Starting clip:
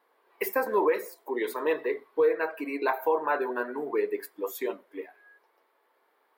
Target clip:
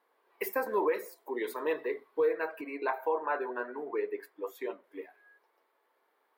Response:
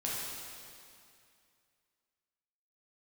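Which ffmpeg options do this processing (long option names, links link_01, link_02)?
-filter_complex "[0:a]asettb=1/sr,asplit=3[link_01][link_02][link_03];[link_01]atrim=end=2.614[link_04];[link_02]atrim=start=2.61:end=4.84,asetpts=PTS-STARTPTS,afade=type=in:duration=0.004:curve=qsin,afade=type=out:start_time=2.226:duration=0.004:curve=qsin,bass=frequency=250:gain=-8,treble=frequency=4000:gain=-11[link_05];[link_03]atrim=start=4.836[link_06];[link_04][link_05]acrossfade=duration=0.004:curve1=hsin:curve2=qsin[link_07];[link_07][link_06]acrossfade=duration=0.004:curve1=qsin:curve2=hsin,volume=-4.5dB"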